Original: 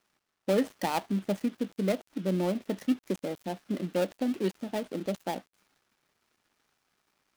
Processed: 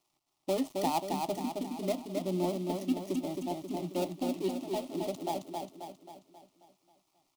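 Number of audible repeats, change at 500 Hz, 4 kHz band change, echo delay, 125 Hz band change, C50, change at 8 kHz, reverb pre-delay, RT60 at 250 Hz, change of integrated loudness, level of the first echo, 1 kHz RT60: 6, −2.5 dB, −0.5 dB, 268 ms, −4.5 dB, no reverb audible, +1.5 dB, no reverb audible, no reverb audible, −2.5 dB, −4.0 dB, no reverb audible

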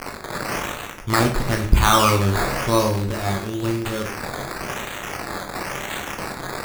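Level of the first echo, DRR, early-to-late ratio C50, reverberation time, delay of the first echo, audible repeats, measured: no echo audible, 2.0 dB, 8.5 dB, 0.40 s, no echo audible, no echo audible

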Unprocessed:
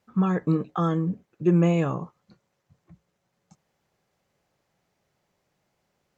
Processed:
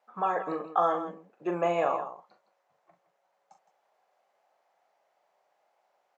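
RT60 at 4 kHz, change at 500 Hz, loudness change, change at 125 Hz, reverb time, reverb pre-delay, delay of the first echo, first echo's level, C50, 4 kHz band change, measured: no reverb audible, −1.0 dB, −5.0 dB, −23.0 dB, no reverb audible, no reverb audible, 40 ms, −7.5 dB, no reverb audible, −3.0 dB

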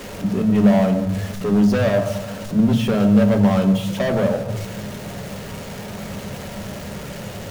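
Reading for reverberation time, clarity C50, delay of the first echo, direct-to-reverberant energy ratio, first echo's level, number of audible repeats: 1.0 s, 9.0 dB, no echo audible, 6.0 dB, no echo audible, no echo audible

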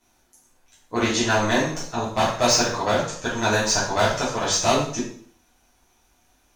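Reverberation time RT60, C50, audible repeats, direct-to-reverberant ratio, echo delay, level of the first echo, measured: 0.55 s, 4.5 dB, no echo audible, −10.0 dB, no echo audible, no echo audible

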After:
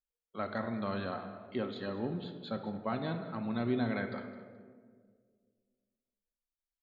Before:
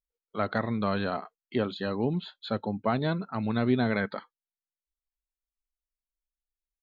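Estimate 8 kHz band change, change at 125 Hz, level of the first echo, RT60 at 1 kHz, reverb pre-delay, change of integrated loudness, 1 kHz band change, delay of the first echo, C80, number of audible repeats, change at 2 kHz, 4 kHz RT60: can't be measured, −8.0 dB, −16.5 dB, 1.5 s, 3 ms, −7.0 dB, −7.0 dB, 213 ms, 9.0 dB, 2, −7.5 dB, 0.90 s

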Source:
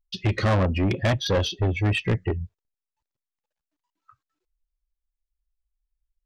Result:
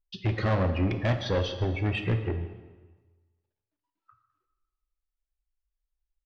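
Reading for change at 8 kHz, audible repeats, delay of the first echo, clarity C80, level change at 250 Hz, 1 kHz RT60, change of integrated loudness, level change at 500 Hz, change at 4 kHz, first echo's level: can't be measured, 1, 152 ms, 10.0 dB, −4.0 dB, 1.3 s, −4.0 dB, −4.0 dB, −7.5 dB, −17.5 dB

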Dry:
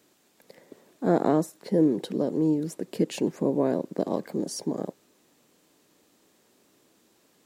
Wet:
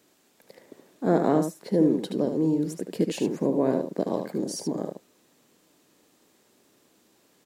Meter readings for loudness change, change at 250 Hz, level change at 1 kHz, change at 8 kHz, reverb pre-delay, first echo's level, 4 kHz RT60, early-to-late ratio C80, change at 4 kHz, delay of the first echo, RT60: +1.0 dB, +1.0 dB, +0.5 dB, +1.0 dB, no reverb audible, −7.0 dB, no reverb audible, no reverb audible, +1.0 dB, 75 ms, no reverb audible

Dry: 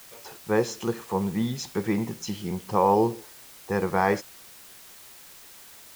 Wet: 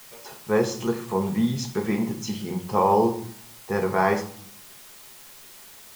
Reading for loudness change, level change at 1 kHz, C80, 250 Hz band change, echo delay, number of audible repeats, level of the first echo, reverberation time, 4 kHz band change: +1.5 dB, +1.5 dB, 16.0 dB, +2.5 dB, no echo audible, no echo audible, no echo audible, 0.55 s, +1.5 dB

